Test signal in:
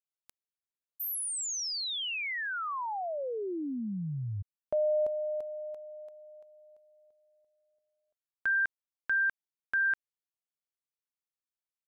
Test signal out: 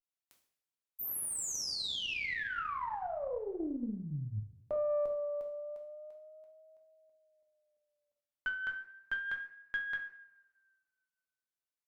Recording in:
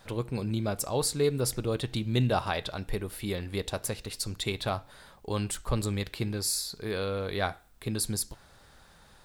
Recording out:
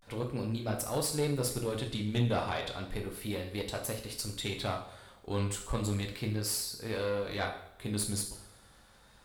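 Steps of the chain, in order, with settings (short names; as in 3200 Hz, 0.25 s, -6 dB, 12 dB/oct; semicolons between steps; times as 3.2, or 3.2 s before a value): two-slope reverb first 0.58 s, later 1.7 s, from -19 dB, DRR 0.5 dB; tube stage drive 18 dB, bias 0.55; vibrato 0.33 Hz 69 cents; gain -3 dB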